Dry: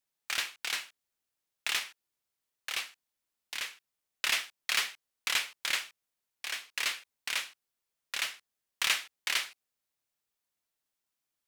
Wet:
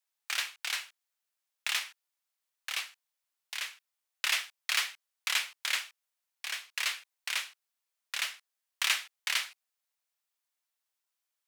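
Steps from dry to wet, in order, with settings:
high-pass filter 680 Hz 12 dB per octave

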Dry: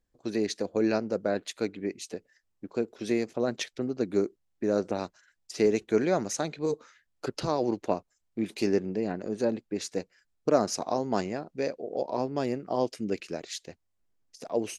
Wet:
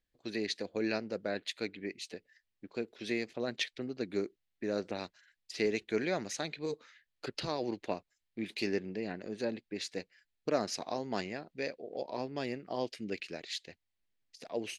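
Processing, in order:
flat-topped bell 2,800 Hz +9.5 dB
level −8 dB

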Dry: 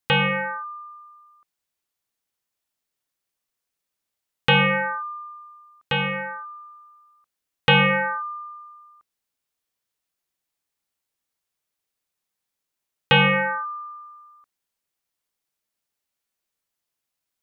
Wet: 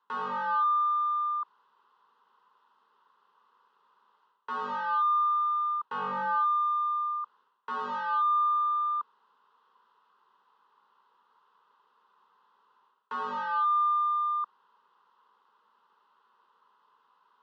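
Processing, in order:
reversed playback
downward compressor 5 to 1, threshold −29 dBFS, peak gain reduction 14.5 dB
reversed playback
sine wavefolder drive 8 dB, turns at −24 dBFS
mid-hump overdrive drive 24 dB, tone 2,200 Hz, clips at −23.5 dBFS
loudspeaker in its box 280–2,800 Hz, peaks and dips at 550 Hz −10 dB, 1,000 Hz +9 dB, 1,800 Hz −9 dB
phaser with its sweep stopped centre 460 Hz, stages 8

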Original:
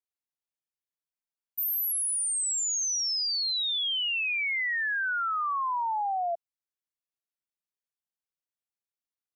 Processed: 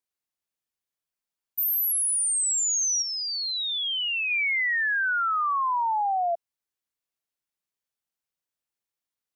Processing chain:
0:03.02–0:04.31: low-pass filter 3,000 Hz 6 dB per octave
level +4 dB

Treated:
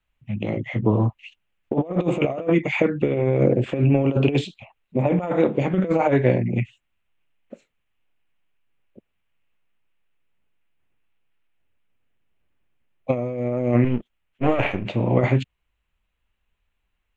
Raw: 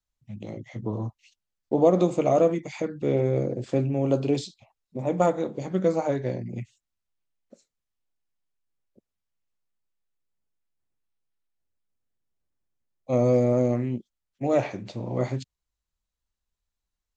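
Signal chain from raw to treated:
0:13.84–0:14.85: gain on one half-wave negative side −12 dB
compressor whose output falls as the input rises −26 dBFS, ratio −0.5
high shelf with overshoot 3,700 Hz −11 dB, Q 3
level +7.5 dB

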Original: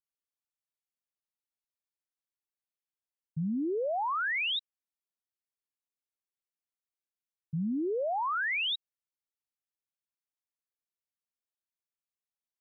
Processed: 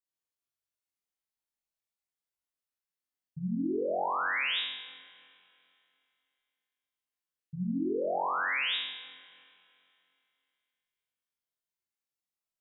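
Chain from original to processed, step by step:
flutter between parallel walls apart 3.8 metres, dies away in 0.95 s
four-comb reverb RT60 2.7 s, combs from 26 ms, DRR 16.5 dB
level −5.5 dB

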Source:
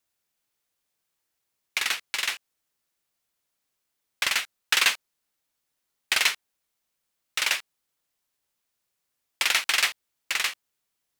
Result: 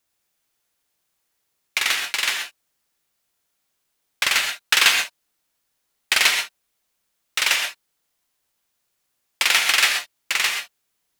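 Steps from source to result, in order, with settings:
reverb whose tail is shaped and stops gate 150 ms rising, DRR 3.5 dB
level +4.5 dB

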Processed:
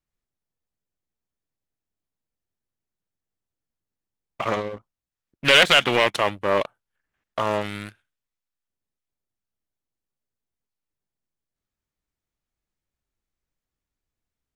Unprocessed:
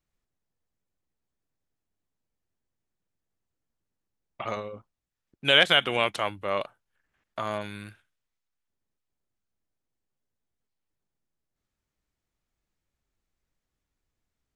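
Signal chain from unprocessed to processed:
leveller curve on the samples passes 2
highs frequency-modulated by the lows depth 0.4 ms

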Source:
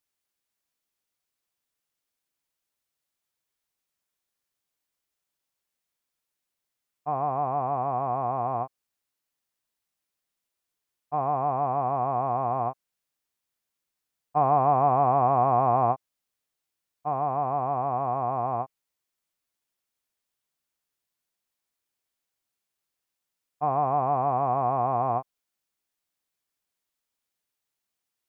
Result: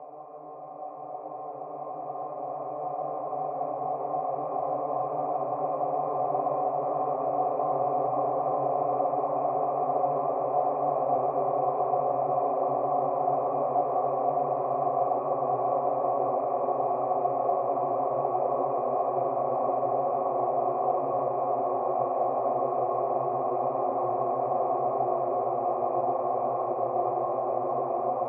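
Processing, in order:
extreme stretch with random phases 16×, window 1.00 s, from 0:16.77
loudspeaker in its box 230–2,300 Hz, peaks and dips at 230 Hz −4 dB, 360 Hz +9 dB, 540 Hz +10 dB, 920 Hz −8 dB, 1,500 Hz −8 dB

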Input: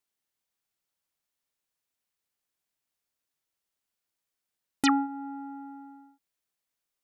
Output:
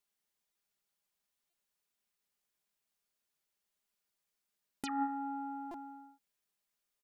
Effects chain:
comb filter 4.9 ms, depth 48%
hum removal 79.89 Hz, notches 26
compressor whose output falls as the input rises −29 dBFS, ratio −1
buffer that repeats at 0:00.52/0:01.50/0:05.71, samples 128, times 10
level −5 dB

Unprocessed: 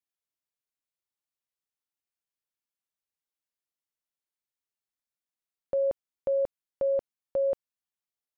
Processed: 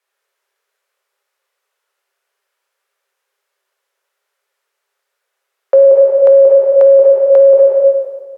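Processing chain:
treble cut that deepens with the level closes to 860 Hz, closed at −27 dBFS
Chebyshev high-pass with heavy ripple 380 Hz, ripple 6 dB
dense smooth reverb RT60 1.6 s, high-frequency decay 1×, DRR −2 dB
boost into a limiter +28 dB
one half of a high-frequency compander decoder only
level −1 dB

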